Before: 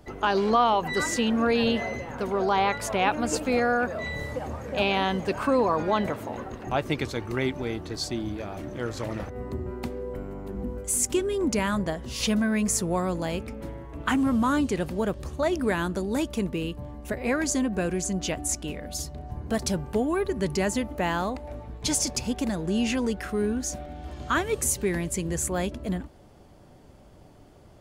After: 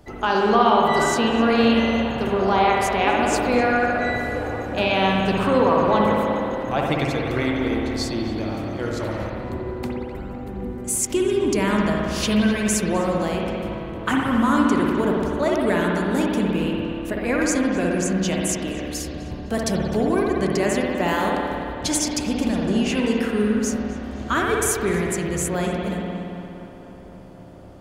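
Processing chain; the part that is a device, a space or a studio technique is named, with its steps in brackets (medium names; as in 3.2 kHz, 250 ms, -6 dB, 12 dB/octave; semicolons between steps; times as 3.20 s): 21.08–21.73 s: treble shelf 7.5 kHz +11 dB; dub delay into a spring reverb (filtered feedback delay 255 ms, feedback 78%, low-pass 3.2 kHz, level -14 dB; spring tank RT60 2.3 s, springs 57 ms, chirp 35 ms, DRR -1.5 dB); trim +2 dB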